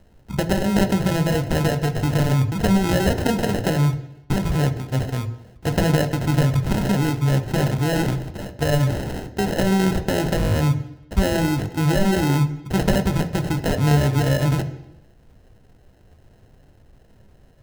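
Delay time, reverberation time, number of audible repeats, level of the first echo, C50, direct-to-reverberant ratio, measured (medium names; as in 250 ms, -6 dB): no echo, 0.85 s, no echo, no echo, 13.5 dB, 8.5 dB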